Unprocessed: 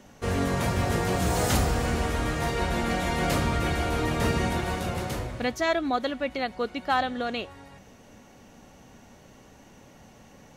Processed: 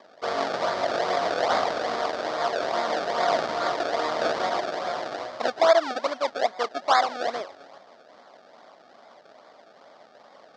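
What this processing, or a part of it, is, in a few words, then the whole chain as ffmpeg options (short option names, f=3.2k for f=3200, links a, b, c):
circuit-bent sampling toy: -af "acrusher=samples=30:mix=1:aa=0.000001:lfo=1:lforange=30:lforate=2.4,highpass=550,equalizer=f=650:t=q:w=4:g=9,equalizer=f=1.2k:t=q:w=4:g=4,equalizer=f=2.6k:t=q:w=4:g=-8,equalizer=f=4.8k:t=q:w=4:g=3,lowpass=f=5.3k:w=0.5412,lowpass=f=5.3k:w=1.3066,volume=3dB"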